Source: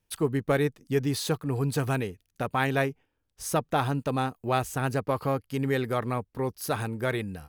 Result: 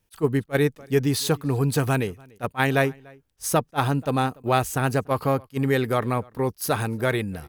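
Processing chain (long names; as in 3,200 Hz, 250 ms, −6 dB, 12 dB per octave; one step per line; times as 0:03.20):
high-shelf EQ 10,000 Hz +3.5 dB
slap from a distant wall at 50 metres, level −26 dB
level that may rise only so fast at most 530 dB per second
level +5 dB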